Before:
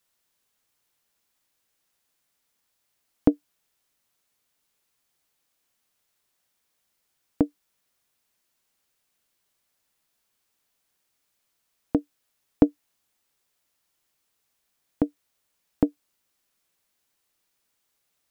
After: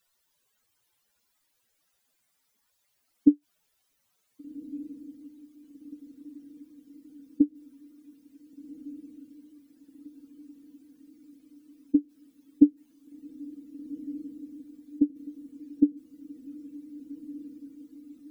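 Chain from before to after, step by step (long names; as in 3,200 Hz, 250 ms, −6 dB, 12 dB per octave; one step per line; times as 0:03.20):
expanding power law on the bin magnitudes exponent 2.8
feedback delay with all-pass diffusion 1,526 ms, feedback 61%, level −14 dB
level +1.5 dB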